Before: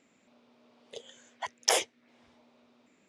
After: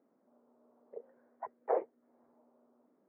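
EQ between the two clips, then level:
high-pass filter 280 Hz 12 dB per octave
dynamic equaliser 450 Hz, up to +4 dB, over −45 dBFS, Q 1.3
Gaussian smoothing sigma 8 samples
−1.0 dB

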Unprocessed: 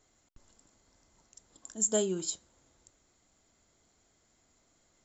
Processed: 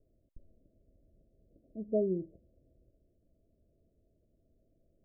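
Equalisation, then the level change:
Chebyshev low-pass filter 660 Hz, order 8
low-shelf EQ 92 Hz +8.5 dB
0.0 dB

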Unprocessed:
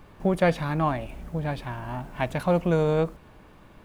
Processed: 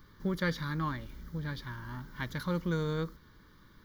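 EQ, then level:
high-shelf EQ 2,500 Hz +10 dB
phaser with its sweep stopped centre 2,600 Hz, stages 6
−6.5 dB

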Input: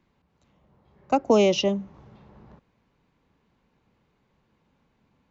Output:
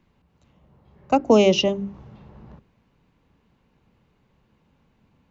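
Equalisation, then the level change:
low-shelf EQ 240 Hz +6.5 dB
parametric band 2,800 Hz +3.5 dB 0.21 octaves
mains-hum notches 50/100/150/200/250/300/350/400 Hz
+2.0 dB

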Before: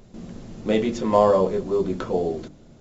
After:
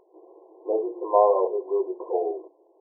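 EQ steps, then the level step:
dynamic equaliser 700 Hz, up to +5 dB, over −33 dBFS, Q 3.7
linear-phase brick-wall band-pass 320–1,100 Hz
notch filter 590 Hz, Q 12
−2.0 dB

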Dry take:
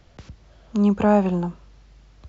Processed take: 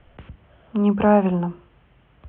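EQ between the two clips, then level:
elliptic low-pass filter 3,100 Hz, stop band 40 dB
mains-hum notches 50/100/150/200/250/300/350 Hz
+2.5 dB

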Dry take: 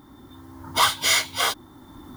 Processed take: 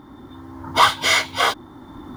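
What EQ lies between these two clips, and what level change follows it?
low-pass filter 2,100 Hz 6 dB per octave
low-shelf EQ 180 Hz −4 dB
+7.5 dB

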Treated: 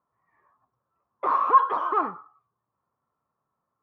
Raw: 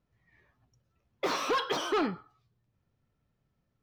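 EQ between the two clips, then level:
high-pass filter 520 Hz 6 dB per octave
low-pass with resonance 1,100 Hz, resonance Q 6.6
0.0 dB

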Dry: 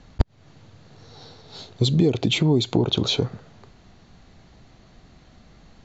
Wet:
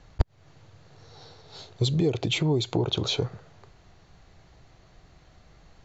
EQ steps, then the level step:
parametric band 230 Hz −11 dB 0.58 octaves
parametric band 3,700 Hz −2.5 dB
−2.5 dB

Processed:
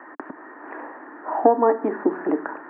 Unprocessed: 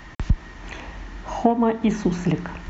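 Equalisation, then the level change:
Chebyshev band-pass filter 280–1,700 Hz, order 4
+5.0 dB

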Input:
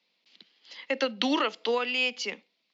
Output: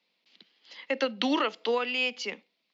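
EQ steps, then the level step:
high-shelf EQ 4,500 Hz −5.5 dB
0.0 dB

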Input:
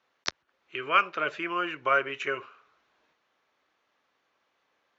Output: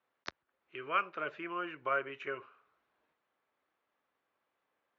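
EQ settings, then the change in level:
low-pass filter 2,200 Hz 6 dB per octave
high-frequency loss of the air 66 metres
−7.0 dB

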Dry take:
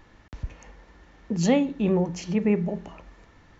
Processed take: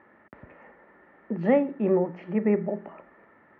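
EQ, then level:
loudspeaker in its box 190–2,200 Hz, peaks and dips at 220 Hz +6 dB, 380 Hz +7 dB, 590 Hz +9 dB, 850 Hz +4 dB, 1,300 Hz +7 dB, 1,900 Hz +8 dB
−5.0 dB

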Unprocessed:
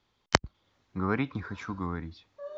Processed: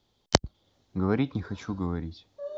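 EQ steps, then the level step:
flat-topped bell 1,600 Hz −8.5 dB
+4.0 dB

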